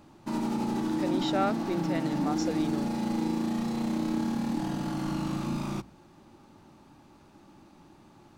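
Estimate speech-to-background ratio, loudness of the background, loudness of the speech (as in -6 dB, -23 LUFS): -3.0 dB, -31.0 LUFS, -34.0 LUFS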